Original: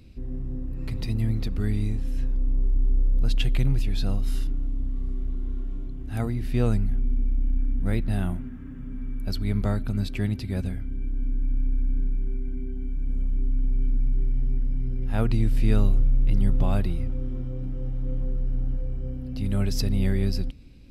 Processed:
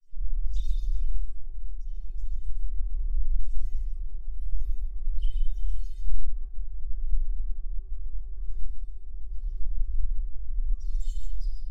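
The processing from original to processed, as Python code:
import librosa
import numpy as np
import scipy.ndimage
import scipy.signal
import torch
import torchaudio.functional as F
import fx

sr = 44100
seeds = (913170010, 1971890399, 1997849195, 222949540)

y = scipy.signal.sosfilt(scipy.signal.cheby2(4, 70, [150.0, 1100.0], 'bandstop', fs=sr, output='sos'), x)
y = fx.high_shelf(y, sr, hz=3200.0, db=-7.5)
y = fx.hum_notches(y, sr, base_hz=50, count=3)
y = fx.over_compress(y, sr, threshold_db=-30.0, ratio=-1.0)
y = fx.granulator(y, sr, seeds[0], grain_ms=100.0, per_s=20.0, spray_ms=100.0, spread_st=7)
y = np.sign(y) * np.maximum(np.abs(y) - 10.0 ** (-56.0 / 20.0), 0.0)
y = fx.vibrato(y, sr, rate_hz=0.45, depth_cents=7.8)
y = fx.stretch_vocoder(y, sr, factor=0.56)
y = fx.stiff_resonator(y, sr, f0_hz=370.0, decay_s=0.22, stiffness=0.008)
y = y + 10.0 ** (-5.5 / 20.0) * np.pad(y, (int(137 * sr / 1000.0), 0))[:len(y)]
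y = fx.room_shoebox(y, sr, seeds[1], volume_m3=910.0, walls='furnished', distance_m=9.8)
y = fx.doppler_dist(y, sr, depth_ms=0.31)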